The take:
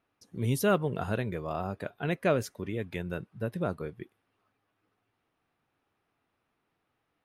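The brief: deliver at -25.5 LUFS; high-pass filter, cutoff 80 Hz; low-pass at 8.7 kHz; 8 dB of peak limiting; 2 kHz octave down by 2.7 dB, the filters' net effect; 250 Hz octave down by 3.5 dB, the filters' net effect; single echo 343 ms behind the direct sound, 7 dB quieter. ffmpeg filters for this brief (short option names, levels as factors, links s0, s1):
-af "highpass=80,lowpass=8700,equalizer=f=250:t=o:g=-5,equalizer=f=2000:t=o:g=-4,alimiter=limit=0.0708:level=0:latency=1,aecho=1:1:343:0.447,volume=3.35"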